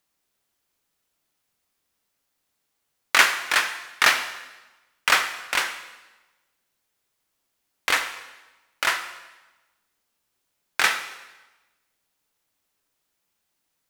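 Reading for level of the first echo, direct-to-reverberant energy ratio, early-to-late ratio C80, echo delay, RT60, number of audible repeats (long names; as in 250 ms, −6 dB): no echo audible, 7.0 dB, 11.5 dB, no echo audible, 1.1 s, no echo audible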